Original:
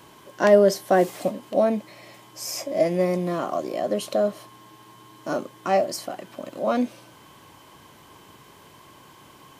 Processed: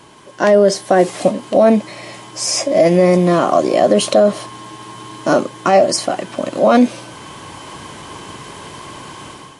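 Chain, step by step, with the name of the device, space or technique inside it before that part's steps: low-bitrate web radio (level rider gain up to 11 dB; peak limiter -8 dBFS, peak gain reduction 6 dB; trim +6 dB; MP3 48 kbps 24 kHz)

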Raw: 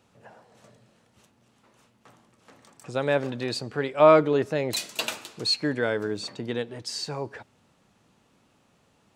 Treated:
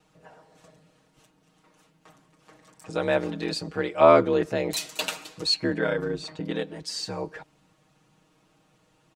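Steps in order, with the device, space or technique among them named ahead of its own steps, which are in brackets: 5.54–6.51 s: tone controls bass +2 dB, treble -5 dB; ring-modulated robot voice (ring modulator 40 Hz; comb 6.4 ms, depth 100%)

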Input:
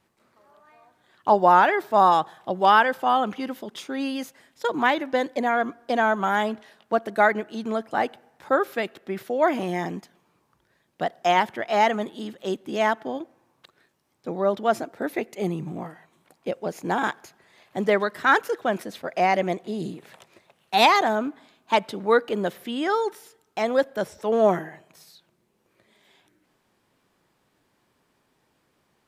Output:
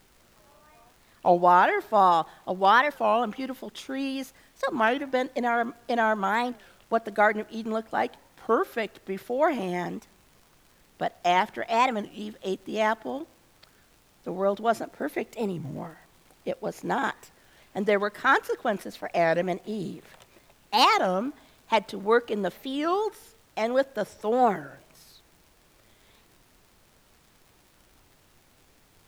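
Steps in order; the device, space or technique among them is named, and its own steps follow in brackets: warped LP (warped record 33 1/3 rpm, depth 250 cents; crackle; pink noise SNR 33 dB); trim -2.5 dB

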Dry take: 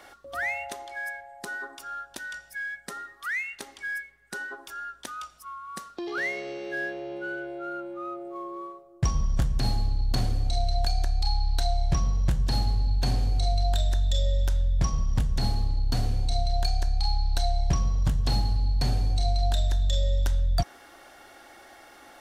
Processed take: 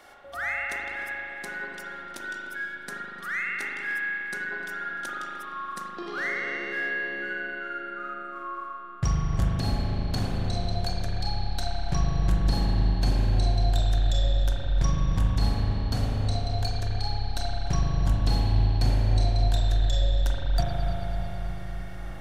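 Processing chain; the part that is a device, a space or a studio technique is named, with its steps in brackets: dub delay into a spring reverb (filtered feedback delay 301 ms, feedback 75%, low-pass 1 kHz, level -7 dB; spring tank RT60 3.6 s, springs 39 ms, chirp 75 ms, DRR -4 dB); trim -2.5 dB

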